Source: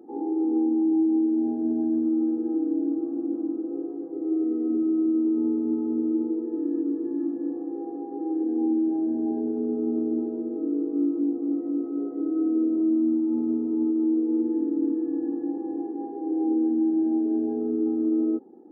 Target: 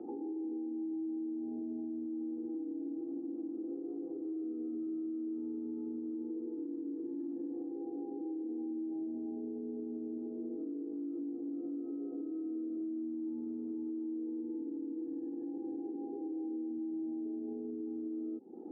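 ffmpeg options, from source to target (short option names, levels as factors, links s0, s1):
-filter_complex "[0:a]lowpass=1100,acrossover=split=190|540[s0][s1][s2];[s0]acompressor=threshold=0.00631:ratio=4[s3];[s1]acompressor=threshold=0.0282:ratio=4[s4];[s2]acompressor=threshold=0.002:ratio=4[s5];[s3][s4][s5]amix=inputs=3:normalize=0,alimiter=level_in=4.47:limit=0.0631:level=0:latency=1:release=300,volume=0.224,volume=1.5"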